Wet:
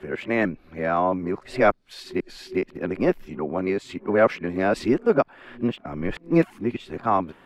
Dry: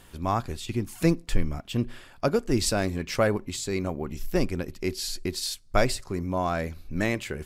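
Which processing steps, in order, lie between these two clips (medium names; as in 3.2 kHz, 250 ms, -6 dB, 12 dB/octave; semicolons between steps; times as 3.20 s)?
reverse the whole clip; three-band isolator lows -19 dB, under 180 Hz, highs -24 dB, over 2.7 kHz; trim +6 dB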